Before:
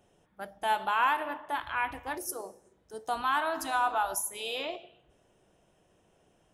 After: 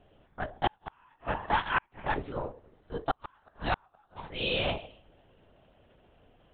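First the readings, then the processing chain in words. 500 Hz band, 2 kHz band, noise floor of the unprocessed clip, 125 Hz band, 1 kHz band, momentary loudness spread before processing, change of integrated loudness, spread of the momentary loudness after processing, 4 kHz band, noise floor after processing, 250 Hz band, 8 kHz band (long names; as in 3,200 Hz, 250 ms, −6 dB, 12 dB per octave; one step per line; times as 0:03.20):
+1.0 dB, −2.0 dB, −68 dBFS, can't be measured, −4.5 dB, 17 LU, −2.5 dB, 19 LU, +2.5 dB, −68 dBFS, +3.5 dB, below −40 dB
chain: gain on one half-wave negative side −3 dB
linear-prediction vocoder at 8 kHz whisper
gate with flip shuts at −22 dBFS, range −42 dB
level +7 dB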